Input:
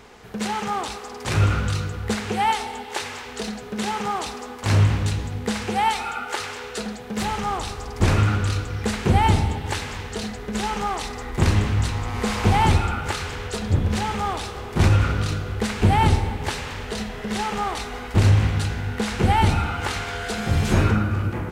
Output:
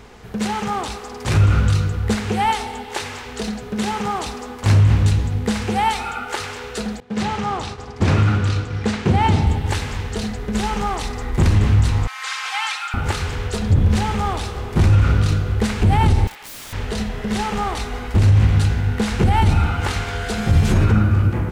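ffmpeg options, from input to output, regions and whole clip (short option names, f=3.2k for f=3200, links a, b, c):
-filter_complex "[0:a]asettb=1/sr,asplit=3[a][b][c];[a]atrim=end=7.004[d];[b]atrim=start=7:end=9.47,asetpts=PTS-STARTPTS,afade=t=in:d=0.004:c=qsin,afade=t=out:st=2.466:d=0.004:c=qsin,agate=range=-33dB:threshold=-30dB:ratio=3:release=100:detection=peak,acrusher=bits=7:mode=log:mix=0:aa=0.000001,highpass=110,lowpass=6.2k[e];[c]atrim=start=9.466[f];[d][e]acrossfade=d=0.004:c1=hsin:c2=qsin[g];[g][f]acrossfade=d=0.004:c1=qsin:c2=hsin,asettb=1/sr,asplit=3[h][i][j];[h]atrim=end=12.074[k];[i]atrim=start=12.07:end=12.94,asetpts=PTS-STARTPTS,afade=t=in:d=0.004:c=qsin,afade=t=out:st=0.866:d=0.004:c=qsin,acrossover=split=8300[l][m];[m]acompressor=threshold=-56dB:ratio=4:attack=1:release=60[n];[l][n]amix=inputs=2:normalize=0,highpass=f=1.2k:w=0.5412,highpass=f=1.2k:w=1.3066,aecho=1:1:3.8:0.87,atrim=end_sample=38367[o];[j]atrim=start=12.936[p];[k][o]acrossfade=d=0.004:c1=hsin:c2=qsin[q];[q][p]acrossfade=d=0.004:c1=qsin:c2=hsin,asettb=1/sr,asplit=3[r][s][t];[r]atrim=end=16.274[u];[s]atrim=start=16.27:end=16.73,asetpts=PTS-STARTPTS,afade=t=in:d=0.004:c=qsin,afade=t=out:st=0.456:d=0.004:c=qsin,highpass=1.3k,aeval=exprs='(mod(42.2*val(0)+1,2)-1)/42.2':c=same[v];[t]atrim=start=16.726[w];[u][v]acrossfade=d=0.004:c1=hsin:c2=qsin[x];[x][w]acrossfade=d=0.004:c1=qsin:c2=hsin,lowshelf=f=190:g=8.5,alimiter=level_in=7dB:limit=-1dB:release=50:level=0:latency=1,volume=-5.5dB"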